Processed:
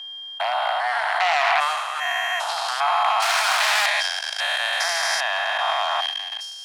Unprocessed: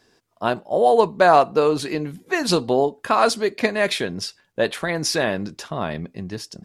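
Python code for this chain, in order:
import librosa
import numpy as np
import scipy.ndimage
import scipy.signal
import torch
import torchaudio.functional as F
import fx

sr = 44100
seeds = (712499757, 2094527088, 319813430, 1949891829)

y = fx.spec_steps(x, sr, hold_ms=400)
y = y + 10.0 ** (-41.0 / 20.0) * np.sin(2.0 * np.pi * 3200.0 * np.arange(len(y)) / sr)
y = fx.peak_eq(y, sr, hz=4400.0, db=-13.0, octaves=0.4, at=(1.5, 2.49))
y = fx.leveller(y, sr, passes=3, at=(3.22, 3.86))
y = fx.high_shelf(y, sr, hz=2300.0, db=-5.5)
y = fx.fold_sine(y, sr, drive_db=11, ceiling_db=-8.5)
y = fx.level_steps(y, sr, step_db=20)
y = scipy.signal.sosfilt(scipy.signal.butter(12, 710.0, 'highpass', fs=sr, output='sos'), y)
y = fx.sustainer(y, sr, db_per_s=36.0)
y = y * 10.0 ** (4.0 / 20.0)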